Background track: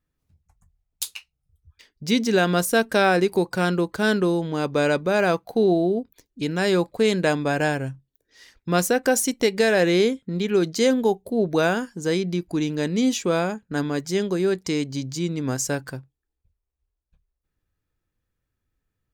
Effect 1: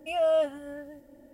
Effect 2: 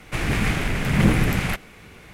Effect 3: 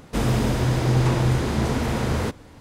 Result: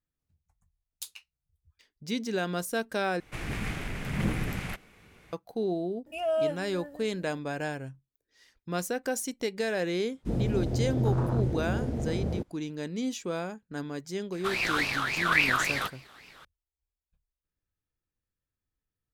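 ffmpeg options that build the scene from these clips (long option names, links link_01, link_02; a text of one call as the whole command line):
ffmpeg -i bed.wav -i cue0.wav -i cue1.wav -i cue2.wav -filter_complex "[2:a]asplit=2[link_01][link_02];[0:a]volume=-11dB[link_03];[3:a]afwtdn=0.0708[link_04];[link_02]aeval=exprs='val(0)*sin(2*PI*1900*n/s+1900*0.35/3.6*sin(2*PI*3.6*n/s))':channel_layout=same[link_05];[link_03]asplit=2[link_06][link_07];[link_06]atrim=end=3.204[link_08];[link_01]atrim=end=2.13,asetpts=PTS-STARTPTS,volume=-11.5dB[link_09];[link_07]atrim=start=5.326[link_10];[1:a]atrim=end=1.33,asetpts=PTS-STARTPTS,volume=-3.5dB,afade=type=in:duration=0.004:curve=hsin,afade=type=out:start_time=1.326:duration=0.004:curve=hsin,adelay=6060[link_11];[link_04]atrim=end=2.6,asetpts=PTS-STARTPTS,volume=-7dB,afade=type=in:duration=0.004:curve=hsin,afade=type=out:start_time=2.596:duration=0.004:curve=hsin,adelay=10120[link_12];[link_05]atrim=end=2.13,asetpts=PTS-STARTPTS,volume=-4.5dB,afade=type=in:duration=0.004:curve=hsin,afade=type=out:start_time=2.126:duration=0.004:curve=hsin,adelay=14320[link_13];[link_08][link_09]acrossfade=duration=0.004:curve1=hsin:curve2=hsin[link_14];[link_14][link_10]acrossfade=duration=0.004:curve1=hsin:curve2=hsin[link_15];[link_15][link_11][link_12][link_13]amix=inputs=4:normalize=0" out.wav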